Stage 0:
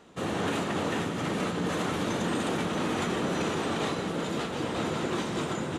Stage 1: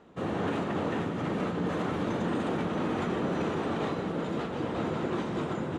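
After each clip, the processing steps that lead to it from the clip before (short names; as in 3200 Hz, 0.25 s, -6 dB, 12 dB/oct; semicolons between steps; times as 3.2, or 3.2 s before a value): LPF 1400 Hz 6 dB/oct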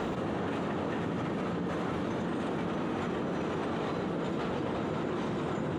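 fast leveller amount 100%; gain -5 dB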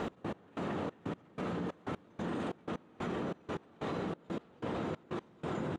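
step gate "x..x...xxx" 185 bpm -24 dB; gain -3.5 dB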